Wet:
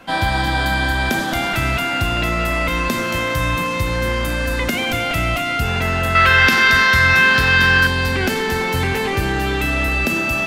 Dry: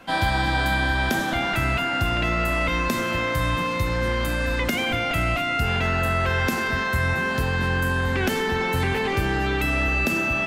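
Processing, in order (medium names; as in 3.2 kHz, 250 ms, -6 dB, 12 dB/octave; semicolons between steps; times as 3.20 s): 6.15–7.87 s: high-order bell 2.5 kHz +10.5 dB 2.5 oct; feedback echo behind a high-pass 226 ms, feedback 72%, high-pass 4.1 kHz, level -3 dB; trim +3.5 dB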